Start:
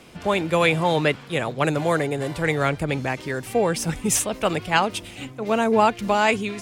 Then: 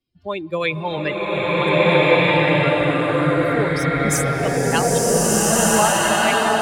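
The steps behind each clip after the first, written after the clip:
spectral dynamics exaggerated over time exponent 2
slow-attack reverb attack 1,580 ms, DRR −10.5 dB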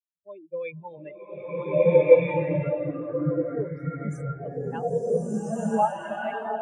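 every bin expanded away from the loudest bin 2.5 to 1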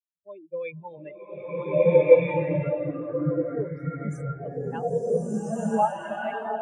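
no processing that can be heard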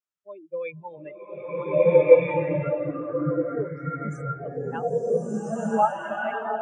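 loudspeaker in its box 100–8,100 Hz, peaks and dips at 180 Hz −4 dB, 1,300 Hz +9 dB, 4,200 Hz −8 dB
level +1 dB

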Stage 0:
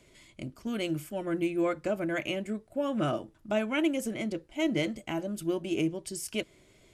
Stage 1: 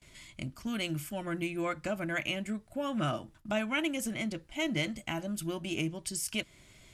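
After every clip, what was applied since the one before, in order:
noise gate with hold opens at −52 dBFS
parametric band 420 Hz −11.5 dB 1.3 octaves
in parallel at −1 dB: downward compressor, threshold −42 dBFS, peak gain reduction 13 dB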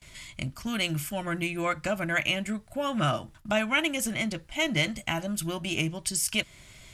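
parametric band 320 Hz −6.5 dB 1.4 octaves
level +7.5 dB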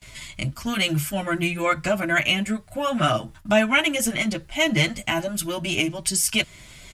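barber-pole flanger 7.8 ms +2.6 Hz
level +9 dB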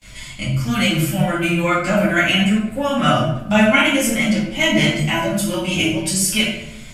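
rectangular room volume 210 cubic metres, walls mixed, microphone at 2.2 metres
level −2.5 dB

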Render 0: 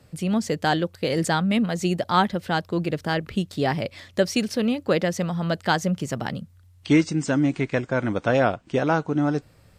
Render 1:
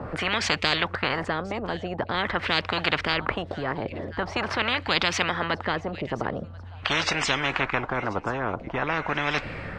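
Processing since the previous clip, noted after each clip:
auto-filter low-pass sine 0.45 Hz 410–2,400 Hz
delay with a high-pass on its return 1,037 ms, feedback 49%, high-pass 5,000 Hz, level −21 dB
every bin compressed towards the loudest bin 10 to 1
level −1.5 dB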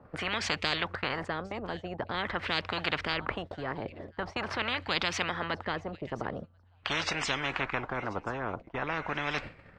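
noise gate −32 dBFS, range −15 dB
level −6.5 dB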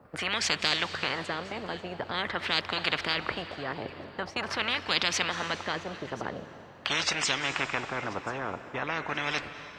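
high-pass filter 99 Hz 6 dB per octave
high-shelf EQ 4,100 Hz +11 dB
on a send at −11.5 dB: convolution reverb RT60 3.5 s, pre-delay 175 ms

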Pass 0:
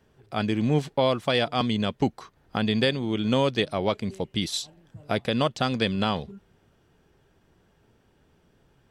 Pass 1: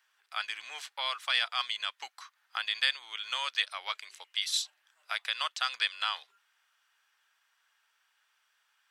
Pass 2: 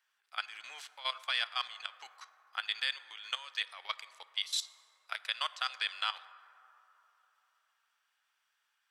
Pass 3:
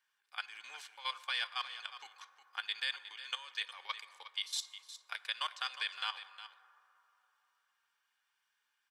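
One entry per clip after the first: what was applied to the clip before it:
high-pass filter 1,200 Hz 24 dB per octave
output level in coarse steps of 16 dB; dense smooth reverb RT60 3.5 s, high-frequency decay 0.3×, DRR 15 dB
notch comb filter 660 Hz; single-tap delay 360 ms −13 dB; level −1.5 dB

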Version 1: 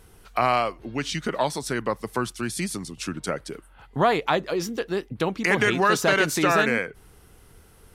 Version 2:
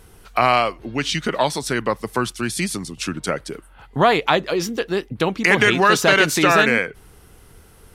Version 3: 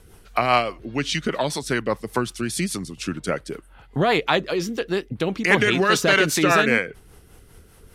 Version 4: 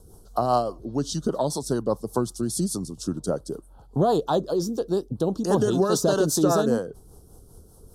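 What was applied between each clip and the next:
dynamic equaliser 3,000 Hz, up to +4 dB, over −39 dBFS, Q 1; level +4.5 dB
rotating-speaker cabinet horn 5 Hz
Butterworth band-reject 2,200 Hz, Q 0.53

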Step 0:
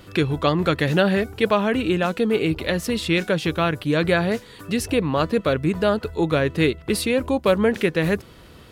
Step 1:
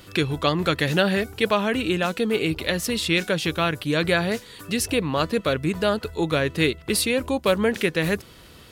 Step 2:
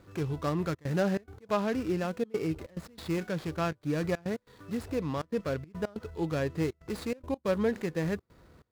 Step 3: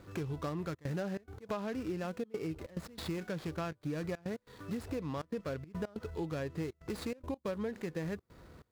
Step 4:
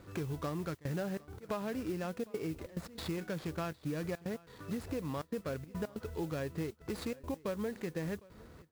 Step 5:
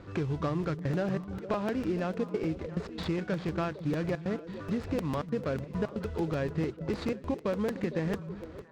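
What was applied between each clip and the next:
high-shelf EQ 2,300 Hz +8 dB; level −3 dB
running median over 15 samples; harmonic and percussive parts rebalanced percussive −6 dB; gate pattern "xxxxxxx.xxx.x." 141 BPM −24 dB; level −5.5 dB
downward compressor 5 to 1, threshold −37 dBFS, peak gain reduction 13 dB; level +2 dB
noise that follows the level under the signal 22 dB; single-tap delay 757 ms −22.5 dB
high-frequency loss of the air 130 metres; echo through a band-pass that steps 228 ms, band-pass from 160 Hz, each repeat 1.4 octaves, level −7.5 dB; regular buffer underruns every 0.15 s, samples 256, repeat, from 0:00.63; level +6.5 dB

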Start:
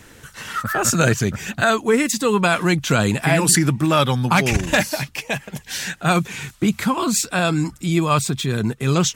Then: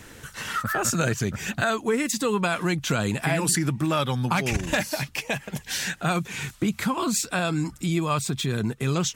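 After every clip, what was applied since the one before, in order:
downward compressor 2 to 1, threshold −26 dBFS, peak gain reduction 8.5 dB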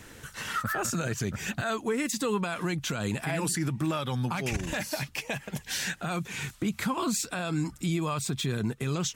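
brickwall limiter −17 dBFS, peak gain reduction 8 dB
level −3 dB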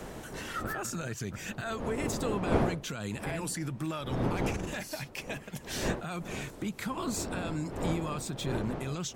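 wind on the microphone 470 Hz −31 dBFS
one half of a high-frequency compander encoder only
level −6 dB

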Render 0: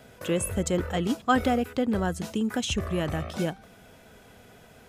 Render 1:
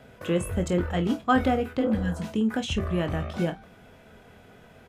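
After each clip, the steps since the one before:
healed spectral selection 0:01.83–0:02.21, 240–1,600 Hz both
bass and treble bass +1 dB, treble −9 dB
ambience of single reflections 23 ms −8 dB, 49 ms −16.5 dB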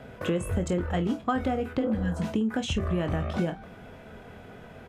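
dynamic equaliser 7,500 Hz, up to +6 dB, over −51 dBFS, Q 0.97
downward compressor 6 to 1, threshold −30 dBFS, peak gain reduction 13 dB
high-shelf EQ 3,300 Hz −8 dB
level +6 dB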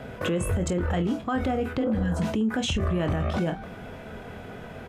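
brickwall limiter −24.5 dBFS, peak gain reduction 10 dB
level +6 dB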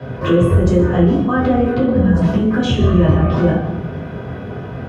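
convolution reverb RT60 1.2 s, pre-delay 3 ms, DRR −8.5 dB
level −9 dB

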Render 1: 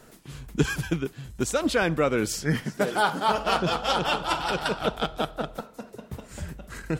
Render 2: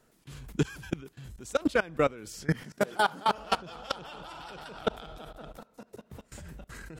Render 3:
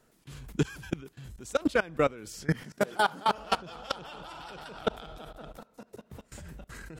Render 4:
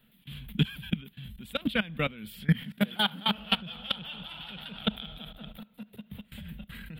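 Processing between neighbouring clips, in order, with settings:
output level in coarse steps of 22 dB
no processing that can be heard
drawn EQ curve 120 Hz 0 dB, 210 Hz +10 dB, 340 Hz −12 dB, 480 Hz −8 dB, 1,200 Hz −7 dB, 3,400 Hz +12 dB, 6,100 Hz −26 dB, 9,000 Hz −7 dB, 14,000 Hz +8 dB

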